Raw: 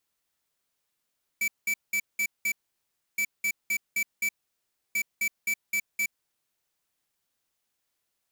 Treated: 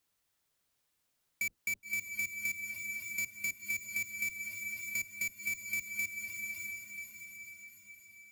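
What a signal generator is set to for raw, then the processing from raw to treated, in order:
beep pattern square 2310 Hz, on 0.07 s, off 0.19 s, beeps 5, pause 0.66 s, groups 3, -26.5 dBFS
octaver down 1 oct, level 0 dB; diffused feedback echo 0.567 s, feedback 53%, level -9 dB; compressor 6:1, threshold -34 dBFS

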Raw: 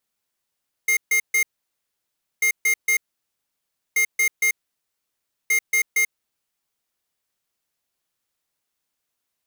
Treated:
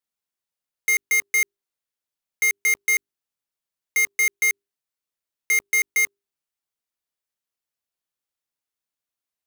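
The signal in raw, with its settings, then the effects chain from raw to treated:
beep pattern square 2120 Hz, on 0.09 s, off 0.14 s, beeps 3, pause 0.99 s, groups 4, -18.5 dBFS
notches 50/100/150/200/250/300/350/400 Hz; sample leveller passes 5

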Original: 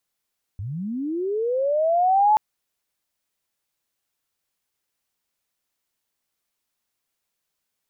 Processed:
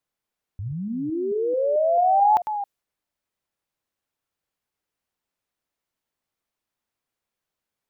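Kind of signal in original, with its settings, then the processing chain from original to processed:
chirp linear 88 Hz -> 870 Hz -28 dBFS -> -13 dBFS 1.78 s
reverse delay 0.22 s, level -10 dB; mismatched tape noise reduction decoder only

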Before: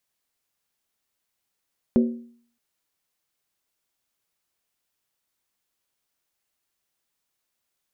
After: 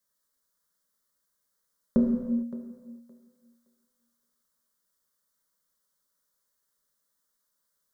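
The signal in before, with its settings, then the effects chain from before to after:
skin hit length 0.62 s, lowest mode 236 Hz, decay 0.55 s, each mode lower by 7 dB, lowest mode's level -12.5 dB
fixed phaser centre 510 Hz, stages 8; thinning echo 0.567 s, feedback 18%, high-pass 190 Hz, level -15.5 dB; non-linear reverb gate 0.48 s falling, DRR 0.5 dB

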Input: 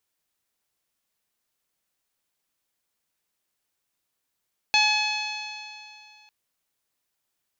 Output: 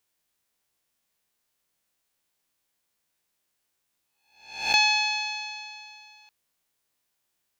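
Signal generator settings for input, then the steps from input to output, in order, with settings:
stretched partials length 1.55 s, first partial 846 Hz, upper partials -7/4.5/-4/1/-13/-9/-20 dB, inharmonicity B 0.0016, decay 2.49 s, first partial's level -23 dB
spectral swells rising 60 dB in 0.57 s; notch 1300 Hz, Q 29

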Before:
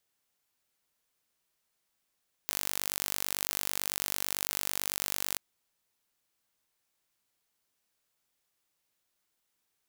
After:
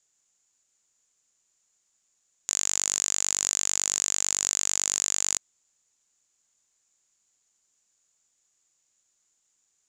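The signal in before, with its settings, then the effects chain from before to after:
pulse train 49/s, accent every 0, -5 dBFS 2.88 s
synth low-pass 7000 Hz, resonance Q 12

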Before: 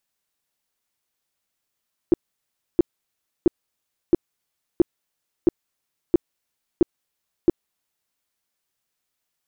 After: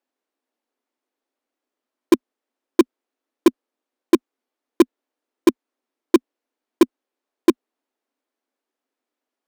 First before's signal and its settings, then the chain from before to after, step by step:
tone bursts 343 Hz, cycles 6, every 0.67 s, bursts 9, -9.5 dBFS
elliptic high-pass 250 Hz, stop band 40 dB; tilt -4.5 dB/oct; in parallel at -12 dB: wrapped overs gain 5.5 dB

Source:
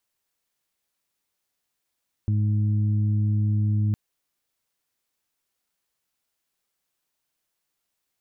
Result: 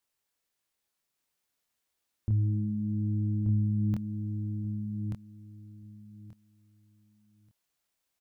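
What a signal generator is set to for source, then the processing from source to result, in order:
steady additive tone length 1.66 s, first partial 105 Hz, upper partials -10/-19.5 dB, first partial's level -19.5 dB
chorus 0.31 Hz, depth 7.1 ms; on a send: feedback echo 1.182 s, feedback 18%, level -4.5 dB

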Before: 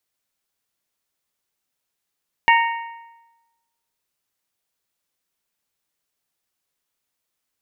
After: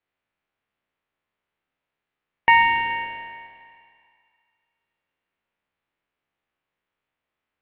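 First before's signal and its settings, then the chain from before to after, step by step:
metal hit bell, lowest mode 927 Hz, modes 4, decay 1.08 s, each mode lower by 3 dB, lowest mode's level -11 dB
spectral trails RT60 1.86 s; LPF 2800 Hz 24 dB/oct; thinning echo 0.141 s, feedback 70%, high-pass 420 Hz, level -17.5 dB

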